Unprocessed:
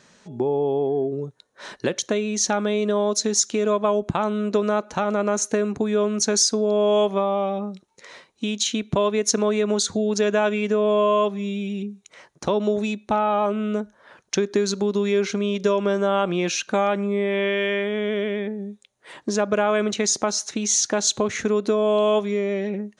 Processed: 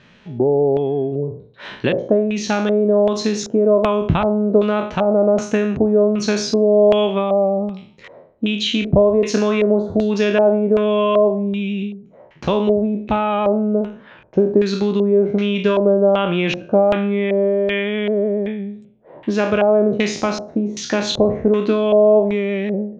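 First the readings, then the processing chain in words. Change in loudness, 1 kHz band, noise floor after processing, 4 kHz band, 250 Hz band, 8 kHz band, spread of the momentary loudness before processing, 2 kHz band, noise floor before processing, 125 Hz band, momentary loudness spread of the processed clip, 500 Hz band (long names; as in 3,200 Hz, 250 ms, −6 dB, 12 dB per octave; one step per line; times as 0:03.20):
+5.0 dB, +1.5 dB, −47 dBFS, +1.0 dB, +6.5 dB, −10.5 dB, 9 LU, +2.5 dB, −61 dBFS, +7.5 dB, 8 LU, +6.0 dB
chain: peak hold with a decay on every bin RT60 0.52 s
auto-filter low-pass square 1.3 Hz 620–2,900 Hz
low-shelf EQ 190 Hz +12 dB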